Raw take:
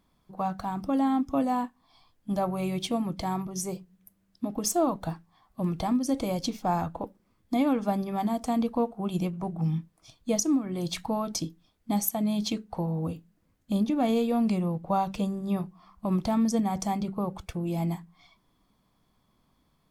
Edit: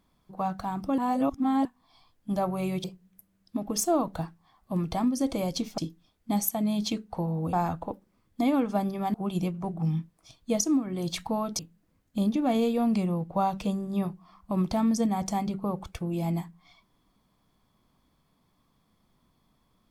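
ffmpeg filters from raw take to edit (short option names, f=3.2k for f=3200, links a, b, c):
-filter_complex "[0:a]asplit=8[a][b][c][d][e][f][g][h];[a]atrim=end=0.982[i];[b]atrim=start=0.978:end=1.652,asetpts=PTS-STARTPTS,areverse[j];[c]atrim=start=1.648:end=2.842[k];[d]atrim=start=3.718:end=6.662[l];[e]atrim=start=11.378:end=13.132[m];[f]atrim=start=6.658:end=8.272[n];[g]atrim=start=8.928:end=11.382[o];[h]atrim=start=13.128[p];[i][j]acrossfade=d=0.004:c1=hsin:c2=hsin[q];[q][k]acrossfade=d=0.004:c1=hsin:c2=hsin[r];[r][l]acrossfade=d=0.004:c1=hsin:c2=hsin[s];[s][m]acrossfade=d=0.004:c1=hsin:c2=hsin[t];[t][n]acrossfade=d=0.004:c1=hsin:c2=hsin[u];[u][o]acrossfade=d=0.004:c1=hsin:c2=hsin[v];[v][p]acrossfade=d=0.004:c1=hsin:c2=hsin"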